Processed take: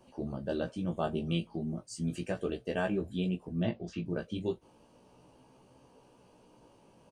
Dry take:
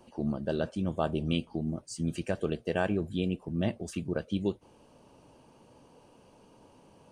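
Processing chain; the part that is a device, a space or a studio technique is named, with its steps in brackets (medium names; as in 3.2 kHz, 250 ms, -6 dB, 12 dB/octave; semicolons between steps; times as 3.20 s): 3.63–4.06 s: low-pass 5.2 kHz 24 dB/octave; double-tracked vocal (doubling 23 ms -12.5 dB; chorus 0.35 Hz, delay 15.5 ms, depth 2.4 ms)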